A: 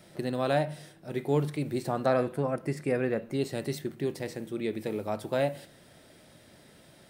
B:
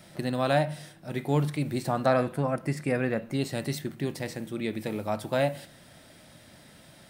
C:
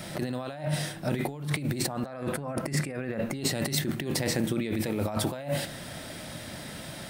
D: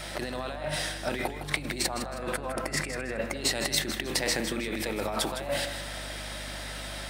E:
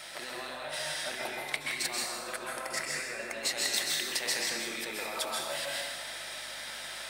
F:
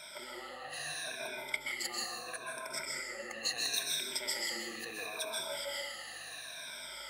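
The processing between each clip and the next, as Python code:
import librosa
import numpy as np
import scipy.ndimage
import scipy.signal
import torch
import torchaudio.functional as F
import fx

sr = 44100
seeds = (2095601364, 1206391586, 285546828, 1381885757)

y1 = fx.peak_eq(x, sr, hz=410.0, db=-7.5, octaves=0.66)
y1 = y1 * librosa.db_to_amplitude(4.0)
y2 = fx.over_compress(y1, sr, threshold_db=-37.0, ratio=-1.0)
y2 = y2 * librosa.db_to_amplitude(5.5)
y3 = fx.weighting(y2, sr, curve='A')
y3 = fx.add_hum(y3, sr, base_hz=50, snr_db=12)
y3 = fx.echo_feedback(y3, sr, ms=159, feedback_pct=35, wet_db=-10)
y3 = y3 * librosa.db_to_amplitude(3.0)
y4 = fx.highpass(y3, sr, hz=1000.0, slope=6)
y4 = fx.rev_plate(y4, sr, seeds[0], rt60_s=0.93, hf_ratio=1.0, predelay_ms=115, drr_db=-1.5)
y4 = y4 * librosa.db_to_amplitude(-4.0)
y5 = fx.spec_ripple(y4, sr, per_octave=1.6, drift_hz=-0.74, depth_db=20)
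y5 = y5 * librosa.db_to_amplitude(-9.0)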